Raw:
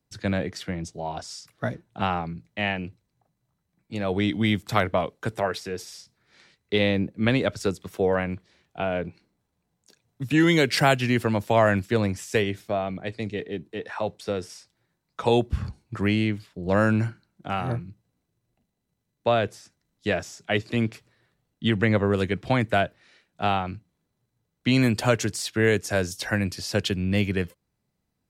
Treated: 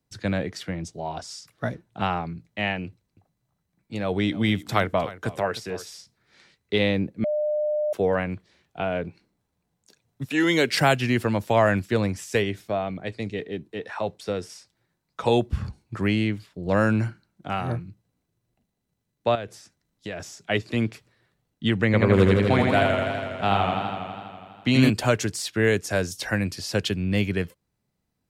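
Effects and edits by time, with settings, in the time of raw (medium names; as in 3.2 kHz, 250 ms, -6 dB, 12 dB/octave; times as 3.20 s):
2.86–5.94 s: delay 307 ms -16.5 dB
7.24–7.93 s: bleep 602 Hz -21.5 dBFS
10.24–10.73 s: high-pass 450 Hz -> 150 Hz
19.35–20.20 s: compression 3:1, threshold -32 dBFS
21.85–24.90 s: modulated delay 82 ms, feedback 78%, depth 77 cents, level -3 dB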